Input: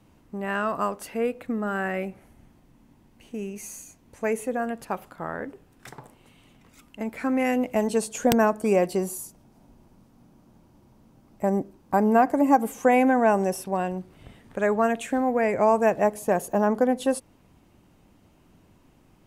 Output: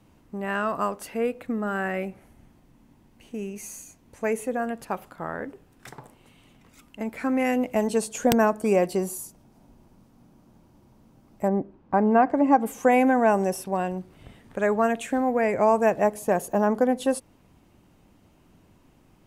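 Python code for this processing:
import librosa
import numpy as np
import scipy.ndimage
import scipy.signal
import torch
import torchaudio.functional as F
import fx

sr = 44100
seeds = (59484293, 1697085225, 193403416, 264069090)

y = fx.lowpass(x, sr, hz=fx.line((11.47, 1900.0), (12.65, 4200.0)), slope=12, at=(11.47, 12.65), fade=0.02)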